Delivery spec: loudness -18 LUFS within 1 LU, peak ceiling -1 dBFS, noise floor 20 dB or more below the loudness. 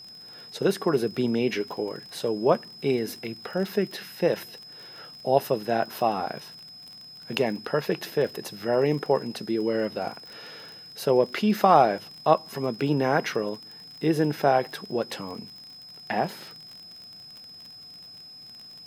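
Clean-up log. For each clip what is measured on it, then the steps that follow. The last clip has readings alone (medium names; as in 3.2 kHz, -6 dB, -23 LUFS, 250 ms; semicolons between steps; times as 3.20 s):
tick rate 40 per s; steady tone 5.1 kHz; tone level -43 dBFS; loudness -26.0 LUFS; peak level -4.5 dBFS; loudness target -18.0 LUFS
-> de-click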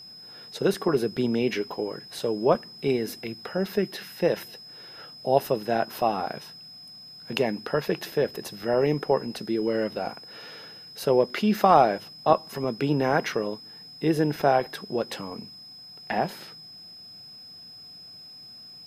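tick rate 0.053 per s; steady tone 5.1 kHz; tone level -43 dBFS
-> band-stop 5.1 kHz, Q 30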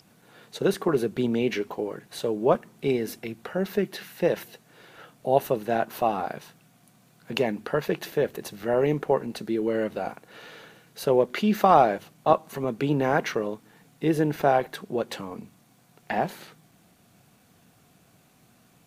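steady tone not found; loudness -26.5 LUFS; peak level -4.5 dBFS; loudness target -18.0 LUFS
-> trim +8.5 dB; peak limiter -1 dBFS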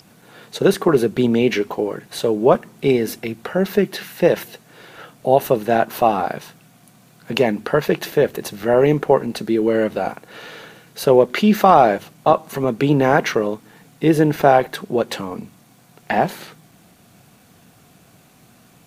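loudness -18.5 LUFS; peak level -1.0 dBFS; noise floor -52 dBFS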